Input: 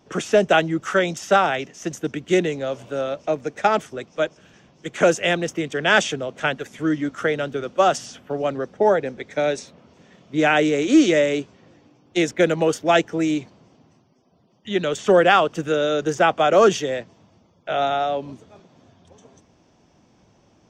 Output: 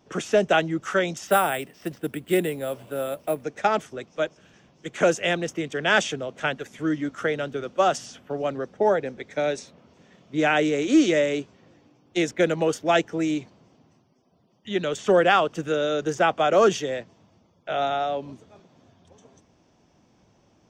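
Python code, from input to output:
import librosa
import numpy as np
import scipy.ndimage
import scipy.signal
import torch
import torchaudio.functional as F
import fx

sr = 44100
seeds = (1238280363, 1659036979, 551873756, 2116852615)

y = fx.resample_bad(x, sr, factor=4, down='filtered', up='hold', at=(1.27, 3.44))
y = y * 10.0 ** (-3.5 / 20.0)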